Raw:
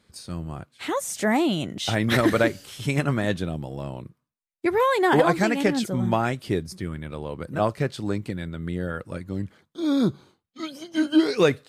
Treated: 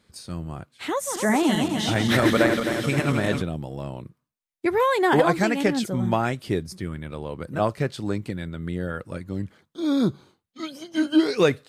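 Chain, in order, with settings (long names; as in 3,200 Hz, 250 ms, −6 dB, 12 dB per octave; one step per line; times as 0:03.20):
0:00.90–0:03.42: feedback delay that plays each chunk backwards 131 ms, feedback 76%, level −6 dB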